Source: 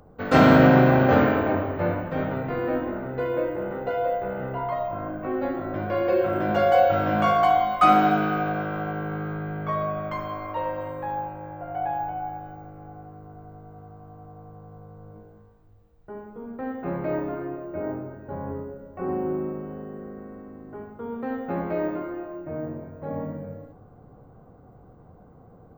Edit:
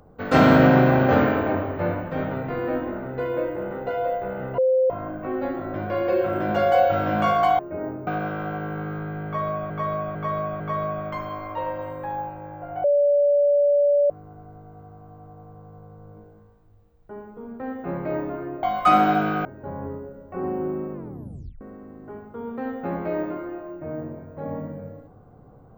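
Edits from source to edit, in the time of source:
4.58–4.90 s: bleep 519 Hz -15.5 dBFS
7.59–8.41 s: swap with 17.62–18.10 s
9.59–10.04 s: loop, 4 plays
11.83–13.09 s: bleep 576 Hz -15 dBFS
19.58 s: tape stop 0.68 s

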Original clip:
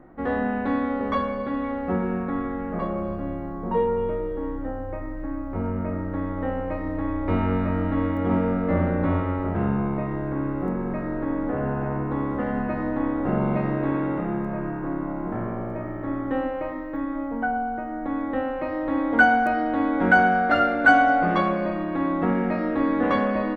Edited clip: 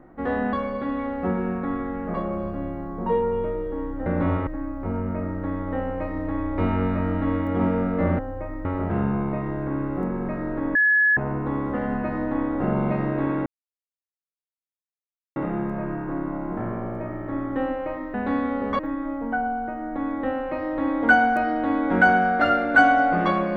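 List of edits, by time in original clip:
0.53–1.18 s: move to 16.89 s
4.71–5.17 s: swap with 8.89–9.30 s
11.40–11.82 s: bleep 1.7 kHz -15 dBFS
14.11 s: insert silence 1.90 s

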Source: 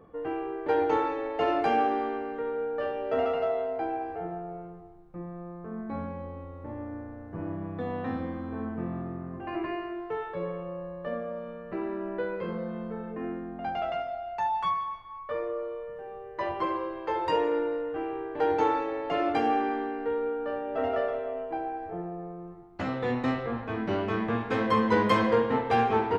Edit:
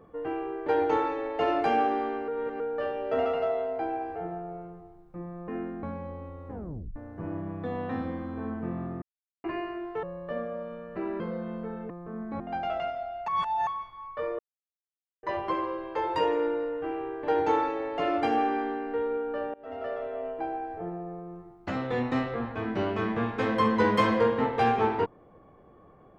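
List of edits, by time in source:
2.28–2.60 s: reverse
5.48–5.98 s: swap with 13.17–13.52 s
6.63 s: tape stop 0.48 s
9.17–9.59 s: mute
10.18–10.79 s: delete
11.96–12.47 s: delete
14.40–14.79 s: reverse
15.51–16.35 s: mute
20.66–21.38 s: fade in, from -23.5 dB

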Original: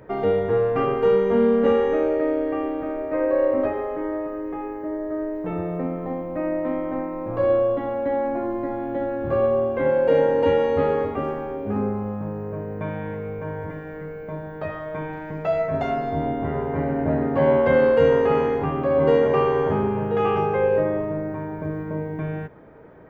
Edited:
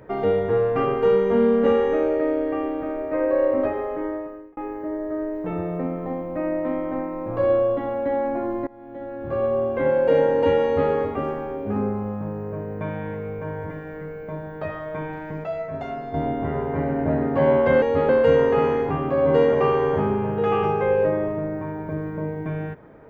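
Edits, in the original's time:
4.05–4.57 s: fade out
8.67–9.76 s: fade in linear, from -22.5 dB
10.64–10.91 s: copy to 17.82 s
15.44–16.14 s: gain -6.5 dB

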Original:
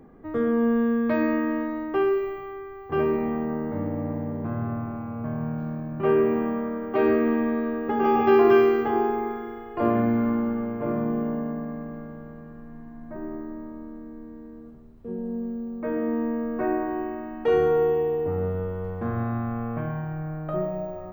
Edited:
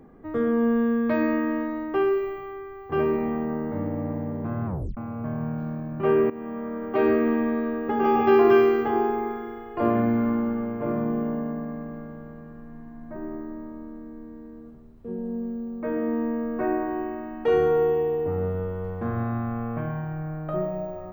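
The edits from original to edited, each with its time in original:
4.66 s: tape stop 0.31 s
6.30–6.86 s: fade in, from -16 dB

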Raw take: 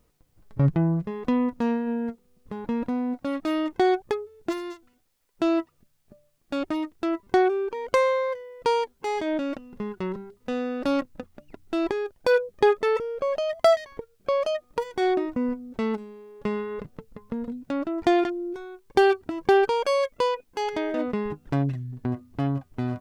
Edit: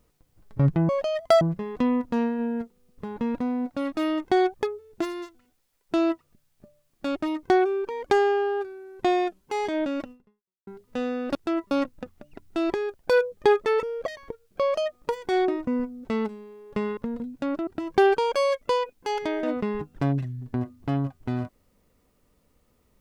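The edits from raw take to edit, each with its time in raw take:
6.91–7.27 s: move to 10.88 s
7.90–8.94 s: speed 77%
9.64–10.20 s: fade out exponential
13.23–13.75 s: move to 0.89 s
16.66–17.25 s: delete
17.95–19.18 s: delete

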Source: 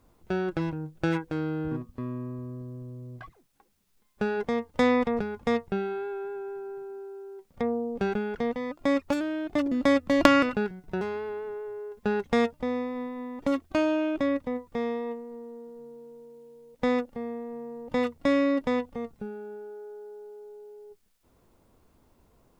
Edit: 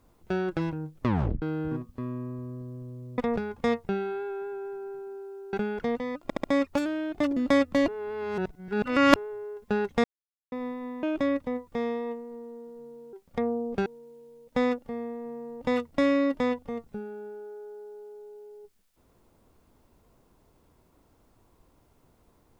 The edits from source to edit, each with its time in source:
0.94 s: tape stop 0.48 s
3.18–5.01 s: delete
7.36–8.09 s: move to 16.13 s
8.79 s: stutter 0.07 s, 4 plays
10.23–11.51 s: reverse
12.39–12.87 s: mute
13.38–14.03 s: delete

